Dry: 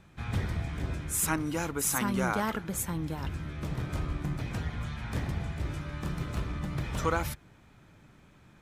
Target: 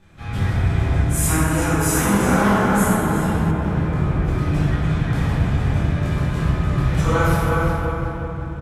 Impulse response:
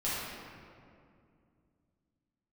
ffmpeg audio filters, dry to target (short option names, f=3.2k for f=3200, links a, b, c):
-filter_complex "[0:a]asplit=2[a][b];[b]adelay=361,lowpass=f=3.7k:p=1,volume=-4dB,asplit=2[c][d];[d]adelay=361,lowpass=f=3.7k:p=1,volume=0.44,asplit=2[e][f];[f]adelay=361,lowpass=f=3.7k:p=1,volume=0.44,asplit=2[g][h];[h]adelay=361,lowpass=f=3.7k:p=1,volume=0.44,asplit=2[i][j];[j]adelay=361,lowpass=f=3.7k:p=1,volume=0.44,asplit=2[k][l];[l]adelay=361,lowpass=f=3.7k:p=1,volume=0.44[m];[a][c][e][g][i][k][m]amix=inputs=7:normalize=0[n];[1:a]atrim=start_sample=2205,asetrate=27342,aresample=44100[o];[n][o]afir=irnorm=-1:irlink=0,asettb=1/sr,asplit=3[p][q][r];[p]atrim=end=3.514[s];[q]atrim=start=3.51:end=4.28,asetpts=PTS-STARTPTS,afade=t=in:d=0.004:c=qsin,afade=t=out:st=0.766:d=0.004:c=qsin,acrossover=split=2500[t][u];[u]acompressor=threshold=-50dB:ratio=4:attack=1:release=60[v];[t][v]amix=inputs=2:normalize=0[w];[r]atrim=start=4.276[x];[s][w]acrossfade=d=0.004:c1=hsin:c2=qsin[y];[y][x]acrossfade=d=0.004:c1=qsin:c2=hsin"